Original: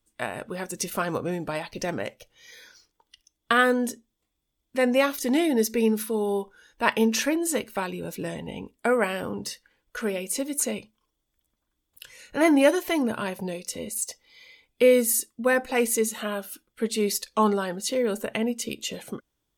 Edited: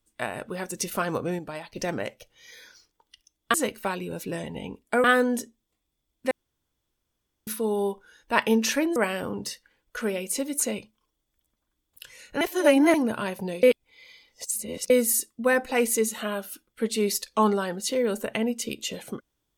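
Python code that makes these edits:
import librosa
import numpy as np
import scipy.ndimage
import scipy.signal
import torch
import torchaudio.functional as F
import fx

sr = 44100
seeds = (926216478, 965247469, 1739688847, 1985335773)

y = fx.edit(x, sr, fx.clip_gain(start_s=1.39, length_s=0.37, db=-6.0),
    fx.room_tone_fill(start_s=4.81, length_s=1.16),
    fx.move(start_s=7.46, length_s=1.5, to_s=3.54),
    fx.reverse_span(start_s=12.41, length_s=0.53),
    fx.reverse_span(start_s=13.63, length_s=1.27), tone=tone)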